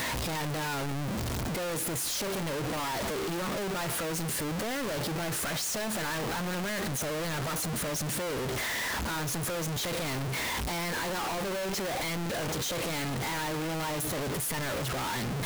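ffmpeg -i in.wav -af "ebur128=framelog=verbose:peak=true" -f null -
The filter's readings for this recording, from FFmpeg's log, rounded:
Integrated loudness:
  I:         -31.5 LUFS
  Threshold: -41.5 LUFS
Loudness range:
  LRA:         0.4 LU
  Threshold: -51.4 LUFS
  LRA low:   -31.7 LUFS
  LRA high:  -31.2 LUFS
True peak:
  Peak:      -26.3 dBFS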